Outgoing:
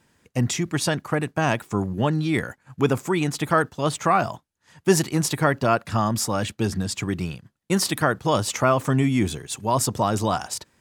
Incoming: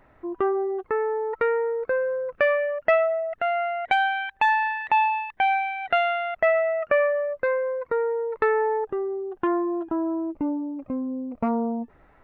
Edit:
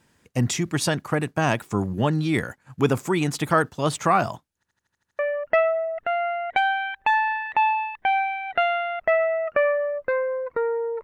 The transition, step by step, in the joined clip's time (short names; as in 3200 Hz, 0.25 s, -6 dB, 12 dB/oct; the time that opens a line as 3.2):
outgoing
4.55 stutter in place 0.08 s, 8 plays
5.19 switch to incoming from 2.54 s